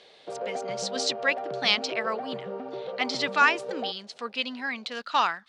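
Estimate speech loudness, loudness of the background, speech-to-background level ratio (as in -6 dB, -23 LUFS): -27.5 LUFS, -35.5 LUFS, 8.0 dB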